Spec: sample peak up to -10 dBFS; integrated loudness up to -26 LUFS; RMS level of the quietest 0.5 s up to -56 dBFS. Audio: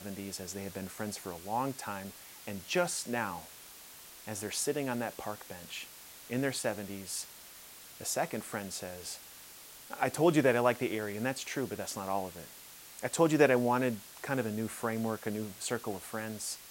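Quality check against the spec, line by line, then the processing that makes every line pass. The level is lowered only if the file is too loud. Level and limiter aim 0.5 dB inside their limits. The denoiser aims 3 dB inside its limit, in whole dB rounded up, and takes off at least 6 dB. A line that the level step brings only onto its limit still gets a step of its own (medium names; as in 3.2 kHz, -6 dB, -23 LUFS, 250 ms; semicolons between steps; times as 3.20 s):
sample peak -11.5 dBFS: pass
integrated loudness -34.0 LUFS: pass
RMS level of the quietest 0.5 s -52 dBFS: fail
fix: noise reduction 7 dB, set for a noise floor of -52 dBFS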